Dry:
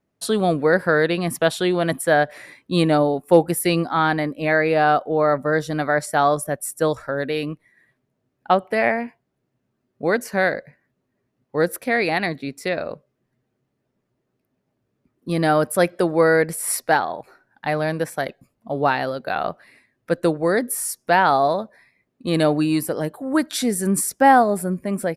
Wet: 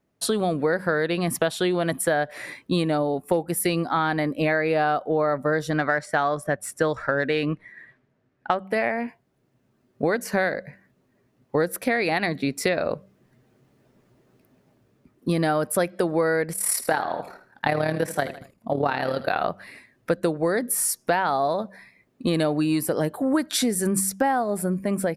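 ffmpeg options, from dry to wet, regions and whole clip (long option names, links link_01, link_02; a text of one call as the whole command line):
ffmpeg -i in.wav -filter_complex "[0:a]asettb=1/sr,asplit=3[link_01][link_02][link_03];[link_01]atrim=end=5.704[link_04];[link_02]atrim=start=5.7:end=8.67,asetpts=PTS-STARTPTS,afade=type=in:duration=0.004:curve=qsin,afade=type=out:start_time=2.966:duration=0.004:curve=qsin,equalizer=frequency=1700:width_type=o:width=0.91:gain=6,adynamicsmooth=sensitivity=1:basefreq=6000[link_05];[link_03]atrim=start=8.666[link_06];[link_04][link_05]acrossfade=duration=0.004:curve1=hsin:curve2=qsin[link_07];[link_07][link_06]acrossfade=duration=0.004:curve1=qsin:curve2=hsin,asettb=1/sr,asplit=3[link_08][link_09][link_10];[link_08]atrim=end=16.534[link_11];[link_09]atrim=start=16.53:end=19.43,asetpts=PTS-STARTPTS,afade=type=in:duration=0.004:curve=qsin,afade=type=out:start_time=2.896:duration=0.004:curve=qsin,tremolo=f=36:d=0.667,aecho=1:1:77|154|231:0.178|0.0676|0.0257,atrim=end_sample=127890[link_12];[link_10]atrim=start=19.426[link_13];[link_11][link_12]acrossfade=duration=0.004:curve1=hsin:curve2=qsin[link_14];[link_14][link_13]acrossfade=duration=0.004:curve1=qsin:curve2=hsin,dynaudnorm=framelen=150:gausssize=9:maxgain=11.5dB,bandreject=frequency=96.39:width_type=h:width=4,bandreject=frequency=192.78:width_type=h:width=4,acompressor=threshold=-22dB:ratio=6,volume=2dB" out.wav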